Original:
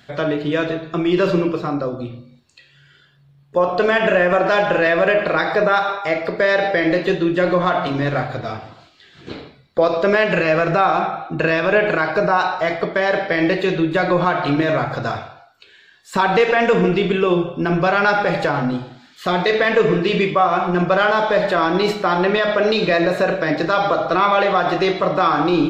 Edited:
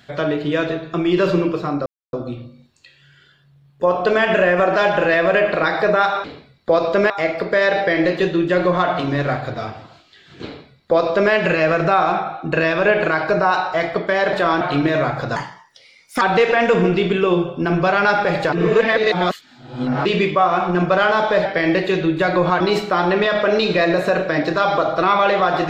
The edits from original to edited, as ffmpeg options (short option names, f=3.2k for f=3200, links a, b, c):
-filter_complex "[0:a]asplit=12[a][b][c][d][e][f][g][h][i][j][k][l];[a]atrim=end=1.86,asetpts=PTS-STARTPTS,afade=t=out:st=1.856:d=0.004:c=hsin,apad=pad_dur=0.27[m];[b]atrim=start=1.86:end=5.972,asetpts=PTS-STARTPTS,afade=t=in:d=0.004:c=hsin[n];[c]atrim=start=9.328:end=10.192[o];[d]atrim=start=5.968:end=13.202[p];[e]atrim=start=21.448:end=21.732[q];[f]atrim=start=14.348:end=15.104[r];[g]atrim=start=15.1:end=16.21,asetpts=PTS-STARTPTS,asetrate=57330,aresample=44100[s];[h]atrim=start=16.206:end=18.522[t];[i]atrim=start=18.518:end=20.052,asetpts=PTS-STARTPTS,areverse[u];[j]atrim=start=20.048:end=21.452[v];[k]atrim=start=13.198:end=14.352[w];[l]atrim=start=21.728[x];[m][n]concat=n=2:v=0:a=1[y];[y][o]acrossfade=d=0.004:c1=hsin:c2=hsin[z];[z][p]acrossfade=d=0.004:c1=hsin:c2=hsin[aa];[aa][q]acrossfade=d=0.004:c1=hsin:c2=hsin[ab];[ab][r]acrossfade=d=0.004:c1=hsin:c2=hsin[ac];[ac][s]acrossfade=d=0.004:c1=hsin:c2=hsin[ad];[ad][t]acrossfade=d=0.004:c1=hsin:c2=hsin[ae];[ae][u]acrossfade=d=0.004:c1=hsin:c2=hsin[af];[af][v]acrossfade=d=0.004:c1=hsin:c2=hsin[ag];[ag][w]acrossfade=d=0.004:c1=hsin:c2=hsin[ah];[ah][x]acrossfade=d=0.004:c1=hsin:c2=hsin"